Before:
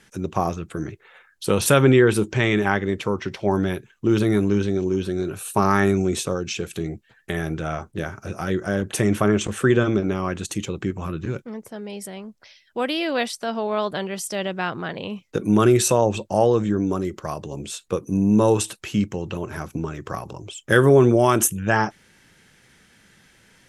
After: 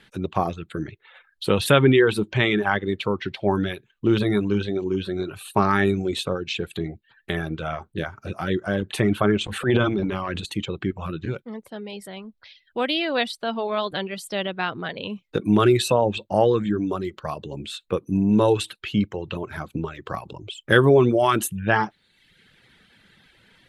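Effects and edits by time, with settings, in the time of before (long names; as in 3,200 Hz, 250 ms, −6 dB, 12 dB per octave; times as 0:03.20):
0:09.48–0:10.50: transient designer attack −10 dB, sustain +7 dB
whole clip: reverb reduction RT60 0.77 s; high shelf with overshoot 4,800 Hz −6.5 dB, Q 3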